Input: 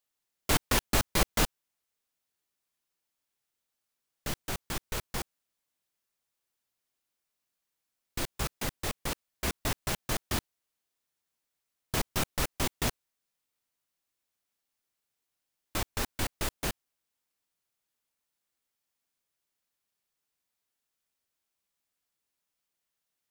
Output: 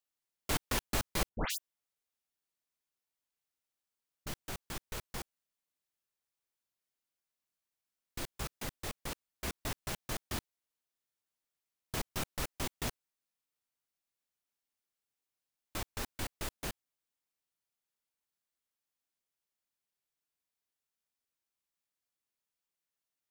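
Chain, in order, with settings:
0:01.29–0:04.27: all-pass dispersion highs, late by 133 ms, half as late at 2,000 Hz
level −7 dB

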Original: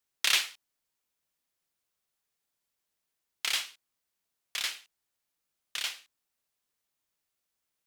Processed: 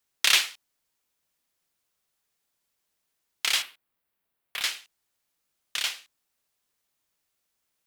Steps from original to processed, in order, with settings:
0:03.62–0:04.62: parametric band 6,300 Hz −13.5 dB 1.3 octaves
level +5 dB

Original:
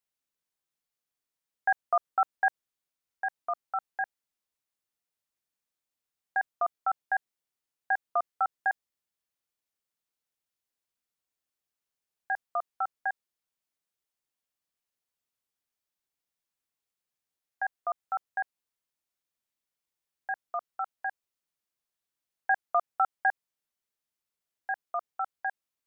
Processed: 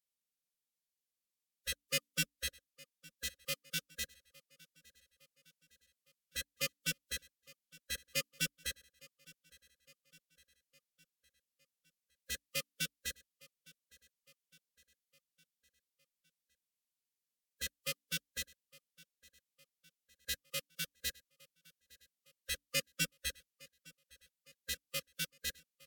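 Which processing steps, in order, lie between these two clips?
mains-hum notches 60/120/180/240/300/360 Hz
in parallel at −7.5 dB: log-companded quantiser 2 bits
on the sum: phase-vocoder pitch shift with formants kept −4 semitones
linear-phase brick-wall band-stop 550–1,200 Hz
phaser with its sweep stopped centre 360 Hz, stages 6
on a send: repeating echo 860 ms, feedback 55%, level −23 dB
on the sum: level −2 dB

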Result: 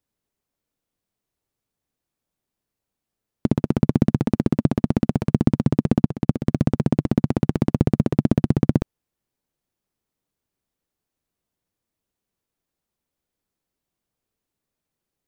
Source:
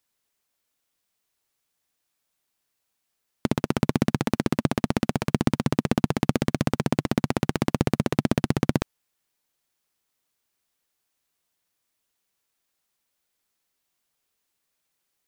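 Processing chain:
tilt shelving filter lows +8 dB, about 660 Hz
0:06.02–0:06.47: expander for the loud parts 2.5 to 1, over −23 dBFS
level −1 dB

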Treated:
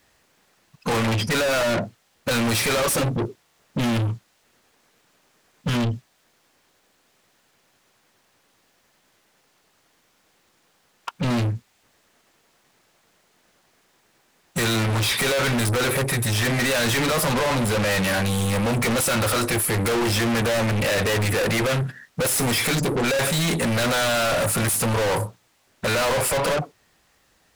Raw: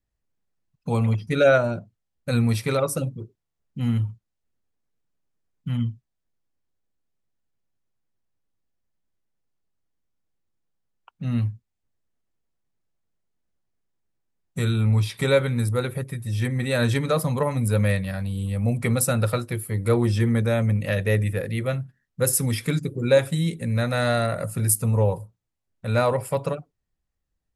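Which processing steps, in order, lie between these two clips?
mid-hump overdrive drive 37 dB, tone 5,700 Hz, clips at −6 dBFS
0:17.33–0:17.91: high-shelf EQ 7,300 Hz −8 dB
soft clipping −20.5 dBFS, distortion −11 dB

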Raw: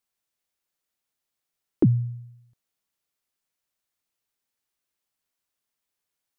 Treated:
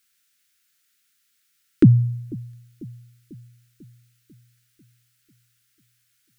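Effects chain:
drawn EQ curve 290 Hz 0 dB, 890 Hz −19 dB, 1,400 Hz +9 dB
bucket-brigade delay 494 ms, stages 2,048, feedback 56%, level −20.5 dB
level +7 dB

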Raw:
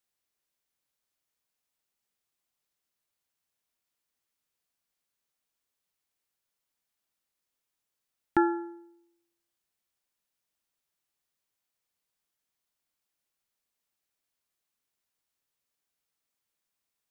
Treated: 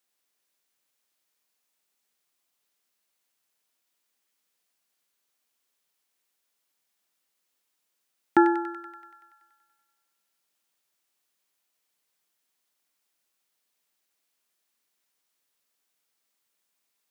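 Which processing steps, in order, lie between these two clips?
high-pass filter 190 Hz
on a send: delay with a high-pass on its return 95 ms, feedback 69%, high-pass 1,600 Hz, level −6 dB
on the sum: level +5.5 dB

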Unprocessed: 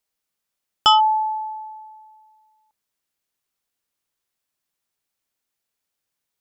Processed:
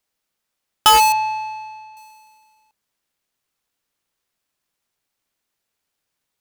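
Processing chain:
each half-wave held at its own peak
0:01.12–0:01.97: high-frequency loss of the air 250 metres

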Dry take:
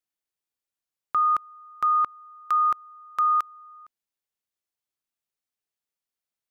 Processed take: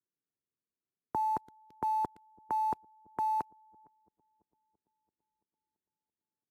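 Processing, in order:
high-pass filter 210 Hz 24 dB per octave
flat-topped bell 570 Hz +13.5 dB 1.1 octaves
notch filter 1,200 Hz, Q 12
single-sideband voice off tune −360 Hz 460–2,200 Hz
delay with a low-pass on its return 336 ms, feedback 61%, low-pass 440 Hz, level −19 dB
in parallel at −4.5 dB: bit reduction 7 bits
on the sum: level −8 dB
Ogg Vorbis 128 kbit/s 32,000 Hz

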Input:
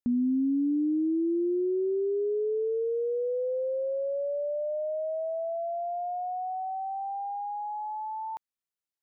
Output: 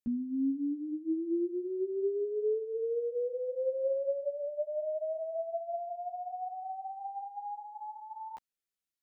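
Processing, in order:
parametric band 940 Hz −10 dB 0.74 octaves
brickwall limiter −29.5 dBFS, peak gain reduction 7 dB
string-ensemble chorus
level +3 dB

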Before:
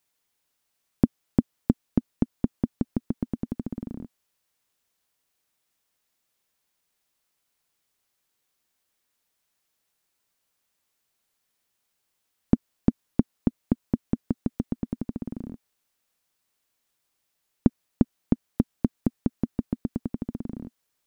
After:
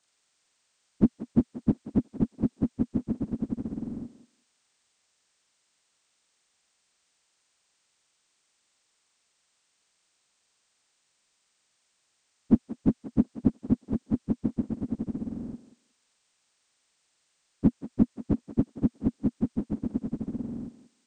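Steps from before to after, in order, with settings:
partials spread apart or drawn together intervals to 80%
feedback echo with a high-pass in the loop 182 ms, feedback 18%, high-pass 380 Hz, level −12 dB
level +4.5 dB

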